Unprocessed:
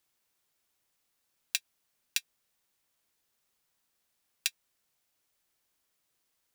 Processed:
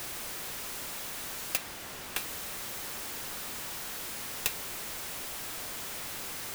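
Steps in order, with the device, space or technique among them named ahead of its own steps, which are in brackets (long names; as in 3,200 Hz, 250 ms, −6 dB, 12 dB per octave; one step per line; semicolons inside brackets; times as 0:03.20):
early CD player with a faulty converter (converter with a step at zero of −31 dBFS; converter with an unsteady clock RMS 0.064 ms)
0:01.57–0:02.18: high-shelf EQ 4,600 Hz −6 dB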